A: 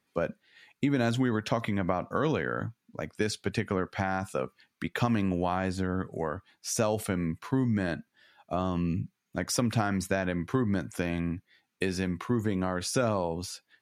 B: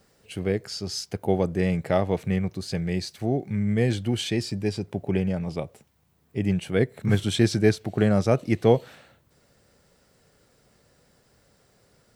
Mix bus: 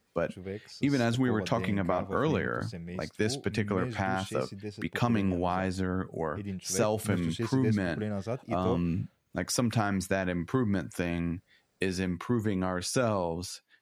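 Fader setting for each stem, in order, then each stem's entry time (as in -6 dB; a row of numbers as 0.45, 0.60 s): -0.5, -13.0 dB; 0.00, 0.00 s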